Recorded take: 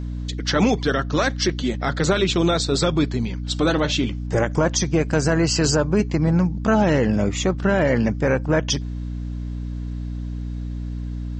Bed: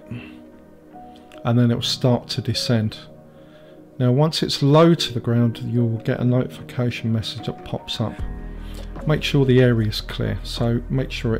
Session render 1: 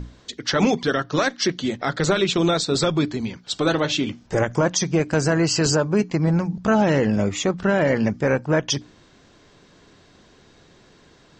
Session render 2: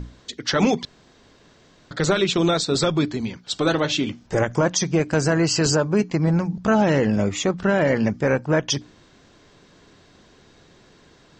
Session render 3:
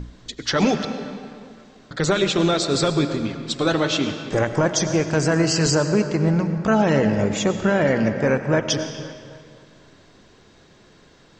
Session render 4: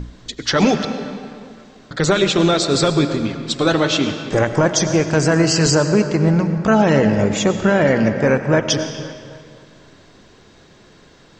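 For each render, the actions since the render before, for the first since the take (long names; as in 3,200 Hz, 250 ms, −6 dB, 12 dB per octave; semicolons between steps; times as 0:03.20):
mains-hum notches 60/120/180/240/300 Hz
0:00.85–0:01.91: fill with room tone
bucket-brigade delay 260 ms, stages 4,096, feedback 47%, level −15 dB; comb and all-pass reverb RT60 2.1 s, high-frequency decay 0.8×, pre-delay 60 ms, DRR 9 dB
level +4 dB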